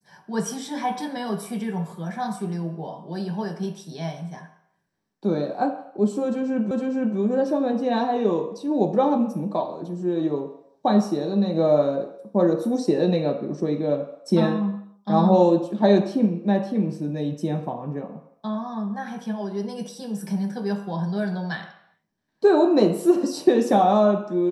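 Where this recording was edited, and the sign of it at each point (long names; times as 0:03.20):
0:06.71: the same again, the last 0.46 s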